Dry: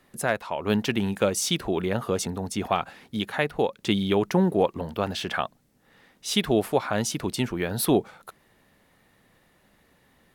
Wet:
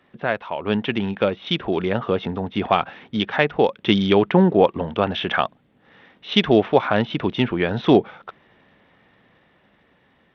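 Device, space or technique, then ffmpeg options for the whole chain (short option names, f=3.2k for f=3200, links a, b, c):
Bluetooth headset: -af "highpass=f=100:p=1,dynaudnorm=f=570:g=7:m=5.5dB,aresample=8000,aresample=44100,volume=2.5dB" -ar 32000 -c:a sbc -b:a 64k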